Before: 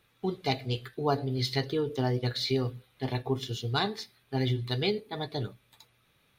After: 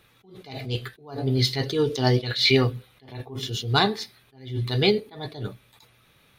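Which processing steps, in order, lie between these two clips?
1.68–2.64 bell 7200 Hz -> 2000 Hz +11 dB 1.4 oct; attack slew limiter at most 120 dB/s; gain +8.5 dB

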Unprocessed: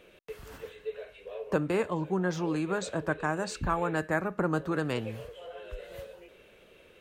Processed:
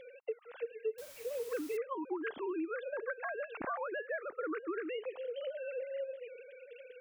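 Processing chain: sine-wave speech; compressor 4:1, threshold -44 dBFS, peak gain reduction 21.5 dB; 0.98–1.77 requantised 10-bit, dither triangular; gain +6 dB

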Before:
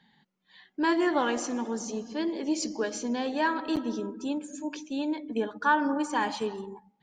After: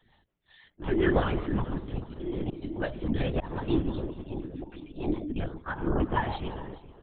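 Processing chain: comb 3.4 ms, depth 94%; rotary speaker horn 5.5 Hz; auto swell 0.253 s; on a send: feedback echo 0.427 s, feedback 27%, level -16.5 dB; on the sum: LPC vocoder at 8 kHz whisper

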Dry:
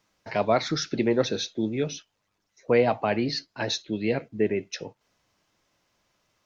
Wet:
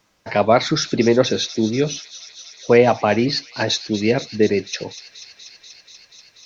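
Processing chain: thin delay 0.242 s, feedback 84%, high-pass 4100 Hz, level -9.5 dB; gain +8 dB

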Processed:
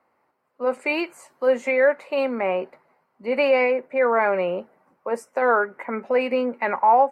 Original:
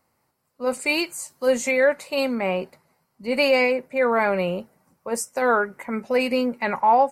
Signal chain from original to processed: three-band isolator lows -17 dB, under 260 Hz, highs -21 dB, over 2600 Hz; in parallel at -2.5 dB: compressor, threshold -31 dBFS, peak gain reduction 16.5 dB

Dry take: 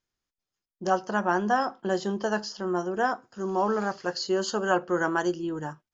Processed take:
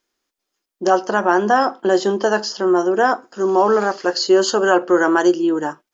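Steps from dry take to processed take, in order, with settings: in parallel at +2 dB: limiter -19 dBFS, peak gain reduction 9.5 dB; on the sum: resonant low shelf 200 Hz -13 dB, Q 1.5; gain +4 dB

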